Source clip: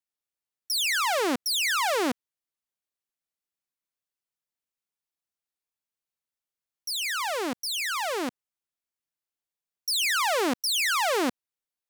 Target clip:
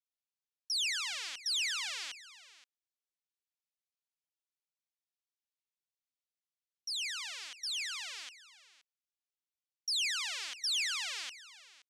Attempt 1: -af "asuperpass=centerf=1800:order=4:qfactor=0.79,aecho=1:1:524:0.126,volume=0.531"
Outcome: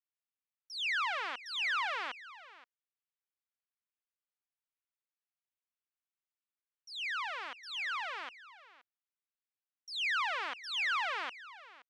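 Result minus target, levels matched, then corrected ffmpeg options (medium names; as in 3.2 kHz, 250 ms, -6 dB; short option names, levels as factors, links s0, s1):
2 kHz band +5.0 dB
-af "asuperpass=centerf=4300:order=4:qfactor=0.79,aecho=1:1:524:0.126,volume=0.531"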